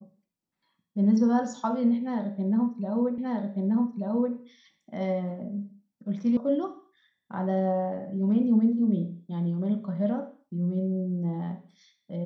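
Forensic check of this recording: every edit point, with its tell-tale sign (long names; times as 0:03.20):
0:03.18: the same again, the last 1.18 s
0:06.37: cut off before it has died away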